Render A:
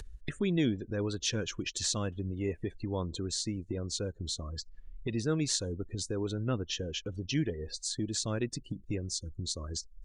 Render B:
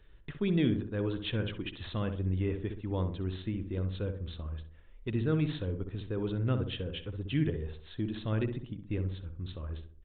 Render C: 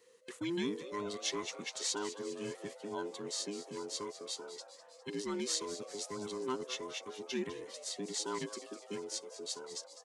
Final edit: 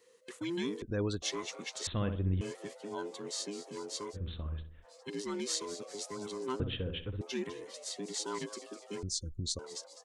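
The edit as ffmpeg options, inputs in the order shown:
-filter_complex "[0:a]asplit=2[a][b];[1:a]asplit=3[c][d][e];[2:a]asplit=6[f][g][h][i][j][k];[f]atrim=end=0.822[l];[a]atrim=start=0.818:end=1.222[m];[g]atrim=start=1.218:end=1.872[n];[c]atrim=start=1.868:end=2.412[o];[h]atrim=start=2.408:end=4.17[p];[d]atrim=start=4.13:end=4.86[q];[i]atrim=start=4.82:end=6.602[r];[e]atrim=start=6.598:end=7.212[s];[j]atrim=start=7.208:end=9.032[t];[b]atrim=start=9.028:end=9.592[u];[k]atrim=start=9.588[v];[l][m]acrossfade=d=0.004:c1=hsin:c2=hsin[w];[w][n]acrossfade=d=0.004:c1=hsin:c2=hsin[x];[x][o]acrossfade=d=0.004:c1=hsin:c2=hsin[y];[y][p]acrossfade=d=0.004:c1=hsin:c2=hsin[z];[z][q]acrossfade=d=0.04:c1=tri:c2=tri[aa];[aa][r]acrossfade=d=0.04:c1=tri:c2=tri[ab];[ab][s]acrossfade=d=0.004:c1=hsin:c2=hsin[ac];[ac][t]acrossfade=d=0.004:c1=hsin:c2=hsin[ad];[ad][u]acrossfade=d=0.004:c1=hsin:c2=hsin[ae];[ae][v]acrossfade=d=0.004:c1=hsin:c2=hsin"

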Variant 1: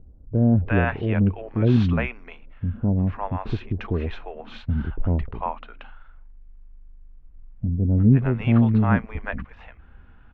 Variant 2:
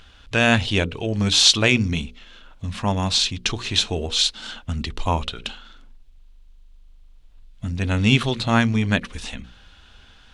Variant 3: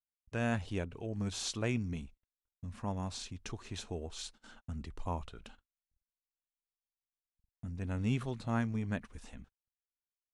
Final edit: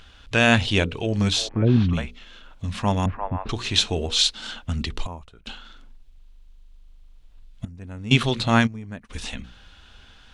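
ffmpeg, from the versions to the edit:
-filter_complex "[0:a]asplit=2[a][b];[2:a]asplit=3[c][d][e];[1:a]asplit=6[f][g][h][i][j][k];[f]atrim=end=1.49[l];[a]atrim=start=1.25:end=2.12[m];[g]atrim=start=1.88:end=3.062[n];[b]atrim=start=3.058:end=3.492[o];[h]atrim=start=3.488:end=5.072[p];[c]atrim=start=5.068:end=5.472[q];[i]atrim=start=5.468:end=7.652[r];[d]atrim=start=7.648:end=8.112[s];[j]atrim=start=8.108:end=8.68[t];[e]atrim=start=8.66:end=9.11[u];[k]atrim=start=9.09[v];[l][m]acrossfade=d=0.24:c1=tri:c2=tri[w];[w][n]acrossfade=d=0.24:c1=tri:c2=tri[x];[x][o]acrossfade=d=0.004:c1=hsin:c2=hsin[y];[y][p]acrossfade=d=0.004:c1=hsin:c2=hsin[z];[z][q]acrossfade=d=0.004:c1=hsin:c2=hsin[aa];[aa][r]acrossfade=d=0.004:c1=hsin:c2=hsin[ab];[ab][s]acrossfade=d=0.004:c1=hsin:c2=hsin[ac];[ac][t]acrossfade=d=0.004:c1=hsin:c2=hsin[ad];[ad][u]acrossfade=d=0.02:c1=tri:c2=tri[ae];[ae][v]acrossfade=d=0.02:c1=tri:c2=tri"

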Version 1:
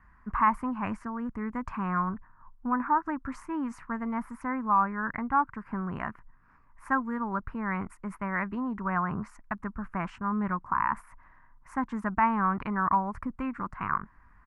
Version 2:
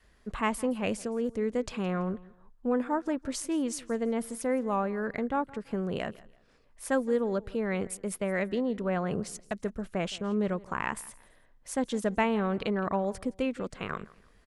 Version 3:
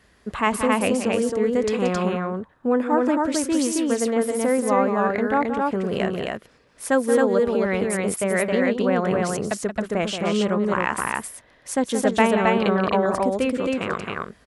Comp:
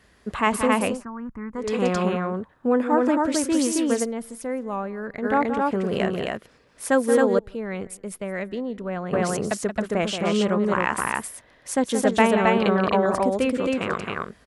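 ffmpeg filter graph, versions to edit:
-filter_complex "[1:a]asplit=2[a][b];[2:a]asplit=4[c][d][e][f];[c]atrim=end=1.04[g];[0:a]atrim=start=0.8:end=1.77[h];[d]atrim=start=1.53:end=4.06[i];[a]atrim=start=4.02:end=5.26[j];[e]atrim=start=5.22:end=7.392[k];[b]atrim=start=7.388:end=9.132[l];[f]atrim=start=9.128[m];[g][h]acrossfade=d=0.24:c1=tri:c2=tri[n];[n][i]acrossfade=d=0.24:c1=tri:c2=tri[o];[o][j]acrossfade=d=0.04:c1=tri:c2=tri[p];[p][k]acrossfade=d=0.04:c1=tri:c2=tri[q];[q][l]acrossfade=d=0.004:c1=hsin:c2=hsin[r];[r][m]acrossfade=d=0.004:c1=hsin:c2=hsin"

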